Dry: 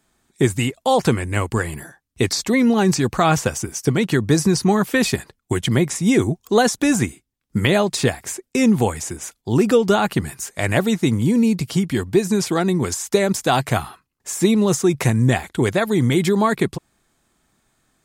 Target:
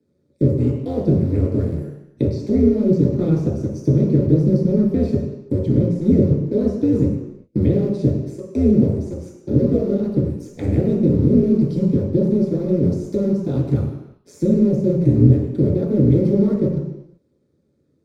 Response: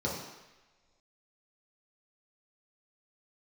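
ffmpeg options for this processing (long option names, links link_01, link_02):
-filter_complex "[0:a]lowshelf=frequency=560:width_type=q:width=3:gain=10,acrossover=split=230[link_01][link_02];[link_02]acompressor=threshold=-20dB:ratio=4[link_03];[link_01][link_03]amix=inputs=2:normalize=0,asplit=2[link_04][link_05];[link_05]aeval=exprs='val(0)*gte(abs(val(0)),0.168)':channel_layout=same,volume=-10.5dB[link_06];[link_04][link_06]amix=inputs=2:normalize=0,tremolo=f=180:d=0.919[link_07];[1:a]atrim=start_sample=2205,afade=type=out:start_time=0.45:duration=0.01,atrim=end_sample=20286[link_08];[link_07][link_08]afir=irnorm=-1:irlink=0,volume=-16.5dB"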